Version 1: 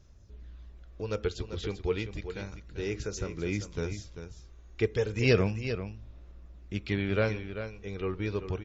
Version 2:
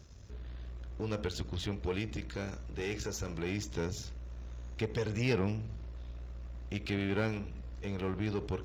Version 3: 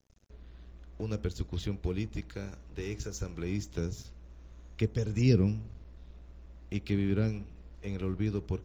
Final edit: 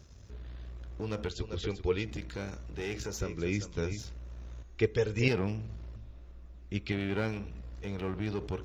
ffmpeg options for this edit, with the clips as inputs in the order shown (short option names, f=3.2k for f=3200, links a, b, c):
-filter_complex "[0:a]asplit=4[a][b][c][d];[1:a]asplit=5[e][f][g][h][i];[e]atrim=end=1.312[j];[a]atrim=start=1.308:end=2.052[k];[f]atrim=start=2.048:end=3.212[l];[b]atrim=start=3.208:end=3.992[m];[g]atrim=start=3.988:end=4.632[n];[c]atrim=start=4.628:end=5.282[o];[h]atrim=start=5.278:end=5.962[p];[d]atrim=start=5.958:end=6.922[q];[i]atrim=start=6.918[r];[j][k]acrossfade=d=0.004:c1=hsin:c2=hsin[s];[s][l]acrossfade=d=0.004:c1=hsin:c2=hsin[t];[t][m]acrossfade=d=0.004:c1=hsin:c2=hsin[u];[u][n]acrossfade=d=0.004:c1=hsin:c2=hsin[v];[v][o]acrossfade=d=0.004:c1=hsin:c2=hsin[w];[w][p]acrossfade=d=0.004:c1=hsin:c2=hsin[x];[x][q]acrossfade=d=0.004:c1=hsin:c2=hsin[y];[y][r]acrossfade=d=0.004:c1=hsin:c2=hsin"